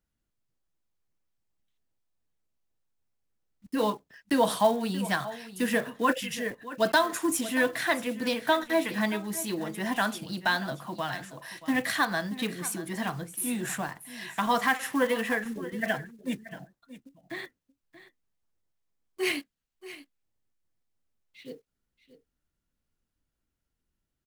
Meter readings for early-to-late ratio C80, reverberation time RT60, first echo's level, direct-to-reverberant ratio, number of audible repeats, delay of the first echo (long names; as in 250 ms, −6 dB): no reverb audible, no reverb audible, −15.5 dB, no reverb audible, 1, 630 ms